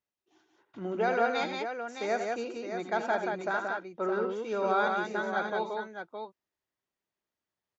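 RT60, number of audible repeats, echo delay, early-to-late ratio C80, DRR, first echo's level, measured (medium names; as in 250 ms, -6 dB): no reverb, 3, 78 ms, no reverb, no reverb, -10.0 dB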